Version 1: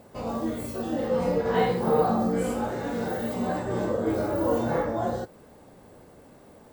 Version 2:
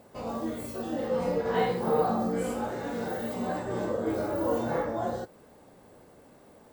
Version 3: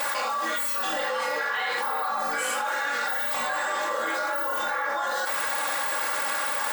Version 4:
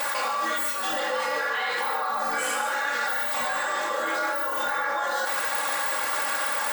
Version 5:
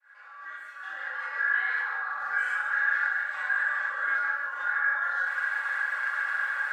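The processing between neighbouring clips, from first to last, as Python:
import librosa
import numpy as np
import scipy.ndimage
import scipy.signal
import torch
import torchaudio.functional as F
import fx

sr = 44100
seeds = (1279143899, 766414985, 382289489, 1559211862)

y1 = fx.low_shelf(x, sr, hz=180.0, db=-4.5)
y1 = y1 * librosa.db_to_amplitude(-2.5)
y2 = fx.highpass_res(y1, sr, hz=1400.0, q=1.7)
y2 = y2 + 0.92 * np.pad(y2, (int(3.6 * sr / 1000.0), 0))[:len(y2)]
y2 = fx.env_flatten(y2, sr, amount_pct=100)
y2 = y2 * librosa.db_to_amplitude(1.5)
y3 = y2 + 10.0 ** (-7.5 / 20.0) * np.pad(y2, (int(145 * sr / 1000.0), 0))[:len(y2)]
y4 = fx.fade_in_head(y3, sr, length_s=1.66)
y4 = fx.bandpass_q(y4, sr, hz=1600.0, q=8.0)
y4 = fx.doubler(y4, sr, ms=40.0, db=-6.5)
y4 = y4 * librosa.db_to_amplitude(6.0)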